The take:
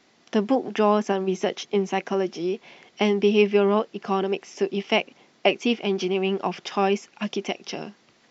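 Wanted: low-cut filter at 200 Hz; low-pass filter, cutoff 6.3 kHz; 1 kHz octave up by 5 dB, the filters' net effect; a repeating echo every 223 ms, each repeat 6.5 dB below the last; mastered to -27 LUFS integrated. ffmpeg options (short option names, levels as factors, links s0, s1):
-af "highpass=200,lowpass=6300,equalizer=f=1000:t=o:g=6.5,aecho=1:1:223|446|669|892|1115|1338:0.473|0.222|0.105|0.0491|0.0231|0.0109,volume=0.596"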